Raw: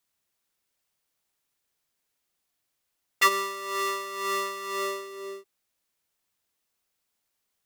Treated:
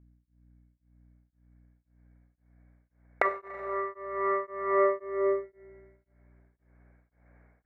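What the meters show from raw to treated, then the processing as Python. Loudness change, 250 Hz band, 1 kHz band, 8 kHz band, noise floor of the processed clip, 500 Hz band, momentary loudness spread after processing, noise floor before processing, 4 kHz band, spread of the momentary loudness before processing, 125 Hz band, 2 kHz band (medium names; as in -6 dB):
-1.5 dB, +4.5 dB, -2.0 dB, under -35 dB, -77 dBFS, +6.0 dB, 9 LU, -80 dBFS, under -25 dB, 16 LU, no reading, -6.0 dB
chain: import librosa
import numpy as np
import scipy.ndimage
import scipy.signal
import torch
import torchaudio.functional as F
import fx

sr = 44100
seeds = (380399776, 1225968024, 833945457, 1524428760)

y = fx.recorder_agc(x, sr, target_db=-9.0, rise_db_per_s=6.5, max_gain_db=30)
y = fx.low_shelf(y, sr, hz=290.0, db=6.0)
y = np.repeat(scipy.signal.resample_poly(y, 1, 6), 6)[:len(y)]
y = scipy.signal.sosfilt(scipy.signal.butter(2, 230.0, 'highpass', fs=sr, output='sos'), y)
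y = fx.dynamic_eq(y, sr, hz=720.0, q=0.84, threshold_db=-37.0, ratio=4.0, max_db=6)
y = scipy.signal.sosfilt(scipy.signal.cheby1(6, 9, 2300.0, 'lowpass', fs=sr, output='sos'), y)
y = np.clip(y, -10.0 ** (-10.5 / 20.0), 10.0 ** (-10.5 / 20.0))
y = fx.rev_schroeder(y, sr, rt60_s=2.1, comb_ms=32, drr_db=7.0)
y = fx.add_hum(y, sr, base_hz=60, snr_db=27)
y = y * np.abs(np.cos(np.pi * 1.9 * np.arange(len(y)) / sr))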